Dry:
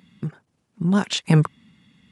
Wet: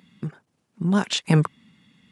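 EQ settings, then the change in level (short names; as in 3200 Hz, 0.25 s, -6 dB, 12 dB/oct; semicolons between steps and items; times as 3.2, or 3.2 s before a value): HPF 130 Hz 6 dB/oct; 0.0 dB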